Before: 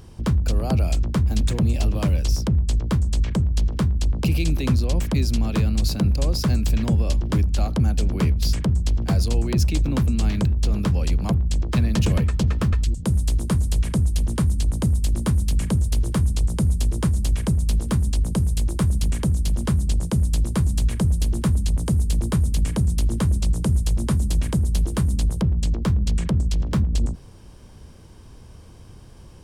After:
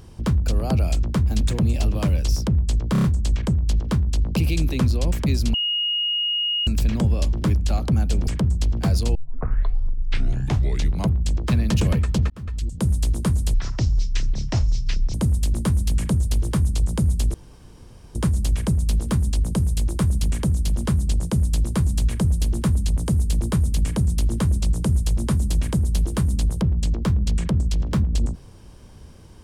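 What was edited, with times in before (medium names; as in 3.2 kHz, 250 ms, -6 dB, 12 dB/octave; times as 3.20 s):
2.92 s: stutter 0.03 s, 5 plays
5.42–6.55 s: bleep 2.87 kHz -20 dBFS
8.15–8.52 s: delete
9.40 s: tape start 1.98 s
12.55–13.09 s: fade in
13.79–14.75 s: speed 60%
16.95 s: insert room tone 0.81 s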